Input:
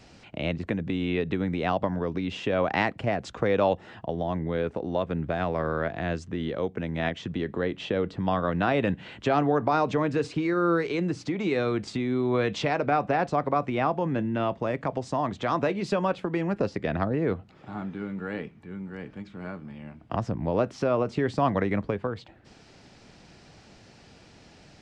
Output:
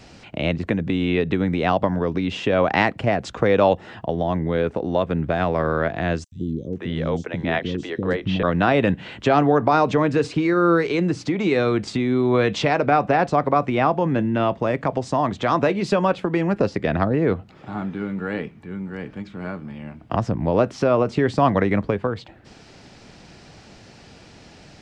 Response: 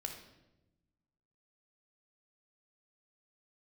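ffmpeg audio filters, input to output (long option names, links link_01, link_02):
-filter_complex "[0:a]asettb=1/sr,asplit=3[link_01][link_02][link_03];[link_01]atrim=end=6.244[link_04];[link_02]atrim=start=6.24:end=8.43,asetpts=PTS-STARTPTS,afade=type=in:duration=0.004:curve=qsin,afade=type=out:start_time=2.186:duration=0.004:curve=qsin,acrossover=split=370|5700[link_05][link_06][link_07];[link_05]adelay=80[link_08];[link_06]adelay=490[link_09];[link_08][link_09][link_07]amix=inputs=3:normalize=0,atrim=end_sample=96579[link_10];[link_03]atrim=start=8.426[link_11];[link_04][link_10]acrossfade=duration=0.004:curve1=hsin:curve2=qsin[link_12];[link_12][link_11]acrossfade=duration=0.004:curve1=qsin:curve2=hsin,volume=6.5dB"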